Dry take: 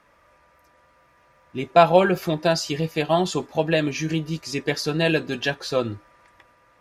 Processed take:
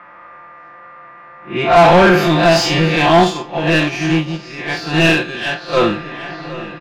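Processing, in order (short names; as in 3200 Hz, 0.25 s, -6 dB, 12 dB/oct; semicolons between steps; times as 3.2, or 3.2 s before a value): time blur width 0.119 s; low-pass opened by the level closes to 1800 Hz, open at -21 dBFS; bell 500 Hz -7 dB 0.81 oct; comb 5.7 ms, depth 91%; overdrive pedal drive 25 dB, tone 2000 Hz, clips at -5 dBFS; darkening echo 0.768 s, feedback 71%, low-pass 4400 Hz, level -17 dB; 3.24–5.77 upward expander 2.5:1, over -22 dBFS; gain +4.5 dB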